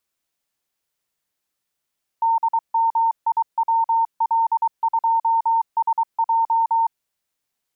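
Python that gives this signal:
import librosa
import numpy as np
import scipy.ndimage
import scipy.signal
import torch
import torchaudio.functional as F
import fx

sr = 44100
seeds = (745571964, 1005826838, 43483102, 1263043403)

y = fx.morse(sr, text='DMIWL2SJ', wpm=23, hz=911.0, level_db=-15.0)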